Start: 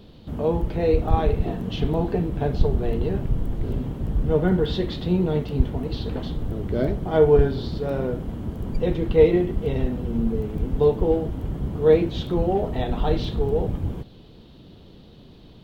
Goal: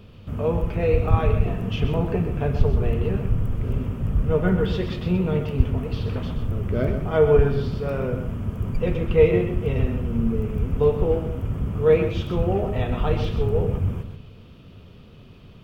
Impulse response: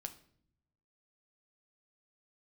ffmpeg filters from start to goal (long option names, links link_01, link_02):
-filter_complex "[0:a]equalizer=frequency=100:width_type=o:width=0.33:gain=8,equalizer=frequency=315:width_type=o:width=0.33:gain=-8,equalizer=frequency=800:width_type=o:width=0.33:gain=-5,equalizer=frequency=1250:width_type=o:width=0.33:gain=7,equalizer=frequency=2500:width_type=o:width=0.33:gain=8,equalizer=frequency=4000:width_type=o:width=0.33:gain=-11,asplit=2[link_01][link_02];[1:a]atrim=start_sample=2205,adelay=127[link_03];[link_02][link_03]afir=irnorm=-1:irlink=0,volume=-5dB[link_04];[link_01][link_04]amix=inputs=2:normalize=0"